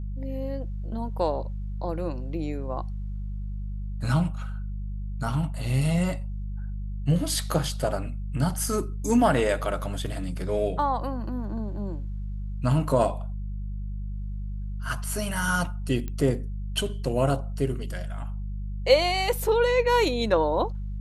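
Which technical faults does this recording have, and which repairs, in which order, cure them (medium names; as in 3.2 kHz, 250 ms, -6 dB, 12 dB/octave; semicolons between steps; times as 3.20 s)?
hum 50 Hz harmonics 4 -32 dBFS
16.08 s: pop -20 dBFS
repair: de-click; de-hum 50 Hz, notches 4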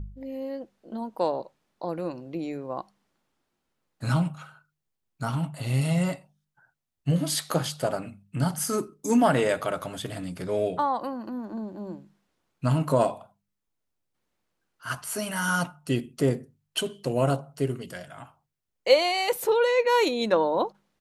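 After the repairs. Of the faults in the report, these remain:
nothing left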